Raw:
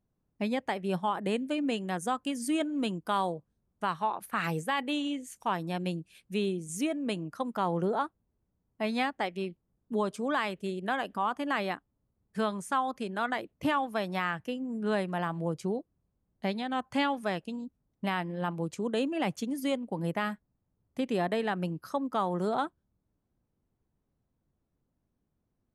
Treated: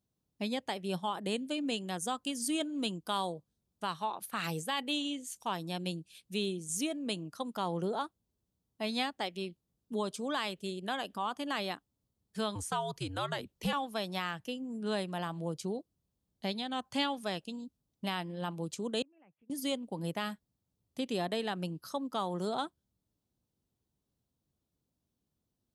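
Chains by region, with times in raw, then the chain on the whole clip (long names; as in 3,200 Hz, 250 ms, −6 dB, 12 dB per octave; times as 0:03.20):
0:12.55–0:13.73: frequency shifter −96 Hz + multiband upward and downward compressor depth 40%
0:19.02–0:19.50: Butterworth low-pass 2,600 Hz 72 dB per octave + gate with flip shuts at −38 dBFS, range −29 dB
whole clip: high-pass filter 48 Hz; high shelf with overshoot 2,700 Hz +7.5 dB, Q 1.5; level −4.5 dB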